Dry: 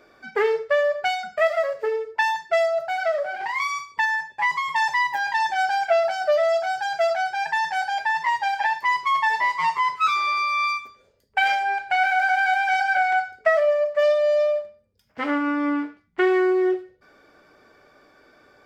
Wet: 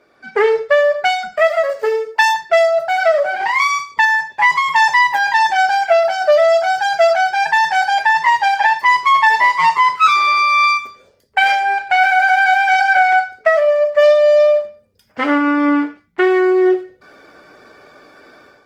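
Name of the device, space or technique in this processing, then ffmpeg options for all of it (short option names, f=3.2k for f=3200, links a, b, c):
video call: -filter_complex "[0:a]asettb=1/sr,asplit=3[a][b][c];[a]atrim=end=1.704[d];[b]atrim=start=1.7:end=2.34,asetpts=PTS-STARTPTS,afade=t=in:d=0.004:c=qsin,afade=t=out:st=0.636:d=0.004:c=qsin,bass=f=250:g=-8,treble=f=4k:g=7[e];[c]atrim=start=2.336[f];[d][e]acrossfade=d=0.004:c1=hsin:c2=qsin[g];[g][f]acrossfade=d=0.004:c1=qsin:c2=hsin,highpass=f=100:p=1,dynaudnorm=f=110:g=5:m=11dB" -ar 48000 -c:a libopus -b:a 20k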